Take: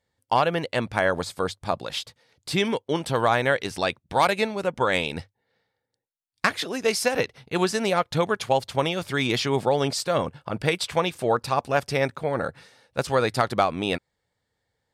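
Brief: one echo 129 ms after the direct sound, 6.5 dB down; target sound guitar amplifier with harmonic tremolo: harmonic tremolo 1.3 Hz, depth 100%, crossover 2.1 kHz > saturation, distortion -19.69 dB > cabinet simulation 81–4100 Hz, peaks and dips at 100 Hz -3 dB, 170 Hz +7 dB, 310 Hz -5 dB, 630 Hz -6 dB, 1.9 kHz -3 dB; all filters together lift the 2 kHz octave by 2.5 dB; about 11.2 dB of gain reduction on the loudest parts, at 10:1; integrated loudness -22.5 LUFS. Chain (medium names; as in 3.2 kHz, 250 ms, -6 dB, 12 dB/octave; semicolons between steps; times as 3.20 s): peaking EQ 2 kHz +5 dB; compression 10:1, threshold -26 dBFS; delay 129 ms -6.5 dB; harmonic tremolo 1.3 Hz, depth 100%, crossover 2.1 kHz; saturation -21 dBFS; cabinet simulation 81–4100 Hz, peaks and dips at 100 Hz -3 dB, 170 Hz +7 dB, 310 Hz -5 dB, 630 Hz -6 dB, 1.9 kHz -3 dB; trim +15 dB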